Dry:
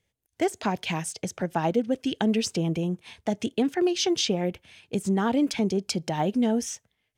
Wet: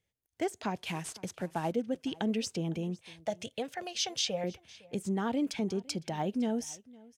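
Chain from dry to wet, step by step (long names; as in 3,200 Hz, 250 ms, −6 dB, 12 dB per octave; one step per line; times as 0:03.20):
0:00.75–0:01.72: variable-slope delta modulation 64 kbit/s
0:02.99–0:04.44: drawn EQ curve 130 Hz 0 dB, 360 Hz −16 dB, 530 Hz +7 dB, 910 Hz −1 dB, 4,000 Hz +3 dB
single-tap delay 508 ms −23 dB
level −7.5 dB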